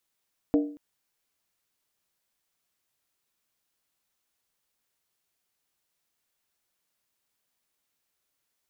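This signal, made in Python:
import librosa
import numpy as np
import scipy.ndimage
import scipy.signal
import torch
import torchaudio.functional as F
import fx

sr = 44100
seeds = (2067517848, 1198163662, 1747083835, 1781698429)

y = fx.strike_skin(sr, length_s=0.23, level_db=-16.5, hz=293.0, decay_s=0.47, tilt_db=7.0, modes=5)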